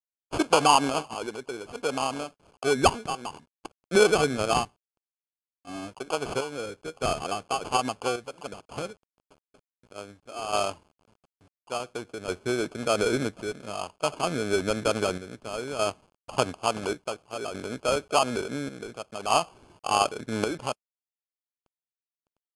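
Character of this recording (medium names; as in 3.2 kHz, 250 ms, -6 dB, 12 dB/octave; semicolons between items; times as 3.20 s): a quantiser's noise floor 10-bit, dither none; chopped level 0.57 Hz, depth 60%, duty 65%; aliases and images of a low sample rate 1.9 kHz, jitter 0%; AAC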